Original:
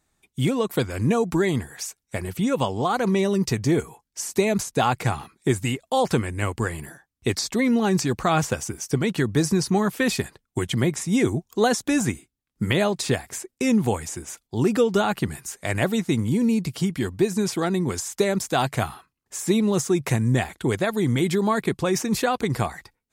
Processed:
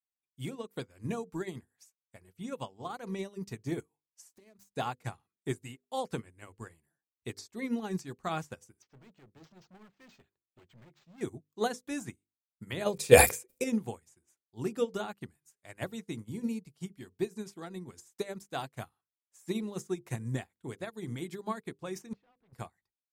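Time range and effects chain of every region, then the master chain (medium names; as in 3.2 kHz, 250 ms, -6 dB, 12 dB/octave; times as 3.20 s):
4.29–4.69 s: self-modulated delay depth 0.13 ms + compression 16:1, threshold -25 dBFS
8.82–11.21 s: hard clipper -26.5 dBFS + decimation joined by straight lines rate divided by 4×
12.86–13.64 s: treble shelf 6.2 kHz +10 dB + small resonant body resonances 500/2400 Hz, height 16 dB + decay stretcher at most 64 dB/s
22.13–22.53 s: overload inside the chain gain 31 dB + distance through air 300 m
whole clip: treble shelf 9.8 kHz +5 dB; hum notches 50/100/150/200/250/300/350/400/450/500 Hz; upward expansion 2.5:1, over -37 dBFS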